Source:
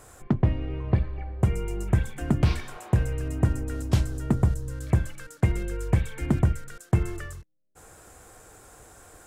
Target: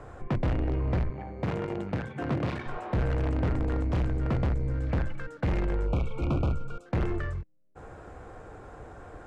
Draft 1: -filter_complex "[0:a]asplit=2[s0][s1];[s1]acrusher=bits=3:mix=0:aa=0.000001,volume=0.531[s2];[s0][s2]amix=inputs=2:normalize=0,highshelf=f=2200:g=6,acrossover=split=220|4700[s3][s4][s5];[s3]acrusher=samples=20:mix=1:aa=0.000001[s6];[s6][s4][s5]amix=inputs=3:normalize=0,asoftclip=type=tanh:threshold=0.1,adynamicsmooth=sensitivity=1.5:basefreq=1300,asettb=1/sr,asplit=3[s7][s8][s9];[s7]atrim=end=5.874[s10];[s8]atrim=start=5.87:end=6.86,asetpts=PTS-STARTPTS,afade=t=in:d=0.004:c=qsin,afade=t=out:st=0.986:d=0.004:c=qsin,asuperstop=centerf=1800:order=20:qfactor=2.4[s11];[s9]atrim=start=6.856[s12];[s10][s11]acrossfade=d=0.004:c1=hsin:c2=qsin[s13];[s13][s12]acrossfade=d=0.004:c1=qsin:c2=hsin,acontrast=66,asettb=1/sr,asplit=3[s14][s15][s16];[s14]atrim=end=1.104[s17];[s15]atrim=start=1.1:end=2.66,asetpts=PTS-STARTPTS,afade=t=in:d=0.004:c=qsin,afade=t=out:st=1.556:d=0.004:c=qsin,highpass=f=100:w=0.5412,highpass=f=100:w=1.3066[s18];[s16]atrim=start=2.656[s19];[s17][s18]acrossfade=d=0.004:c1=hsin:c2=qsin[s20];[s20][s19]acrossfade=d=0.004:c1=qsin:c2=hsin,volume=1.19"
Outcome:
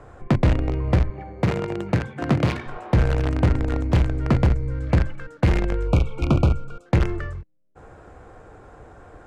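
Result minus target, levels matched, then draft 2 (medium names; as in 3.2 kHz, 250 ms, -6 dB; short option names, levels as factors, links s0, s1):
saturation: distortion -6 dB
-filter_complex "[0:a]asplit=2[s0][s1];[s1]acrusher=bits=3:mix=0:aa=0.000001,volume=0.531[s2];[s0][s2]amix=inputs=2:normalize=0,highshelf=f=2200:g=6,acrossover=split=220|4700[s3][s4][s5];[s3]acrusher=samples=20:mix=1:aa=0.000001[s6];[s6][s4][s5]amix=inputs=3:normalize=0,asoftclip=type=tanh:threshold=0.0266,adynamicsmooth=sensitivity=1.5:basefreq=1300,asettb=1/sr,asplit=3[s7][s8][s9];[s7]atrim=end=5.874[s10];[s8]atrim=start=5.87:end=6.86,asetpts=PTS-STARTPTS,afade=t=in:d=0.004:c=qsin,afade=t=out:st=0.986:d=0.004:c=qsin,asuperstop=centerf=1800:order=20:qfactor=2.4[s11];[s9]atrim=start=6.856[s12];[s10][s11]acrossfade=d=0.004:c1=hsin:c2=qsin[s13];[s13][s12]acrossfade=d=0.004:c1=qsin:c2=hsin,acontrast=66,asettb=1/sr,asplit=3[s14][s15][s16];[s14]atrim=end=1.104[s17];[s15]atrim=start=1.1:end=2.66,asetpts=PTS-STARTPTS,afade=t=in:d=0.004:c=qsin,afade=t=out:st=1.556:d=0.004:c=qsin,highpass=f=100:w=0.5412,highpass=f=100:w=1.3066[s18];[s16]atrim=start=2.656[s19];[s17][s18]acrossfade=d=0.004:c1=hsin:c2=qsin[s20];[s20][s19]acrossfade=d=0.004:c1=qsin:c2=hsin,volume=1.19"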